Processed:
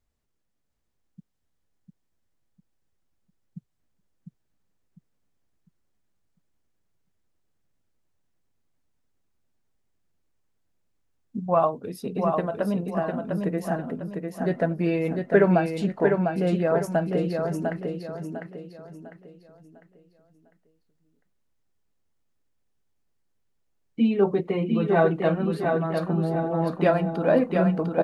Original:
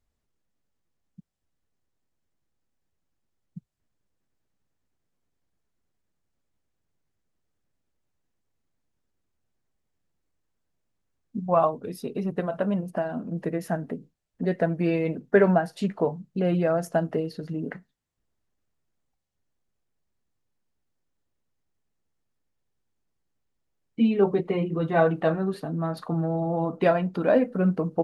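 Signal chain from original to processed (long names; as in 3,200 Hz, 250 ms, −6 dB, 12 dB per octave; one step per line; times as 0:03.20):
repeating echo 701 ms, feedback 36%, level −4.5 dB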